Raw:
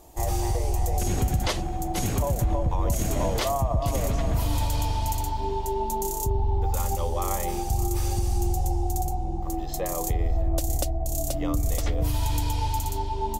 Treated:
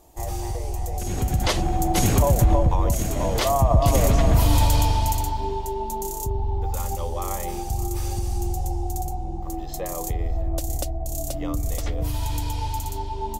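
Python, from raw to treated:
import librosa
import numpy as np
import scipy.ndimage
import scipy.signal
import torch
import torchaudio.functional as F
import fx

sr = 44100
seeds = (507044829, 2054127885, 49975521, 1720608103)

y = fx.gain(x, sr, db=fx.line((1.03, -3.0), (1.68, 7.0), (2.58, 7.0), (3.14, 0.0), (3.72, 7.5), (4.71, 7.5), (5.76, -1.0)))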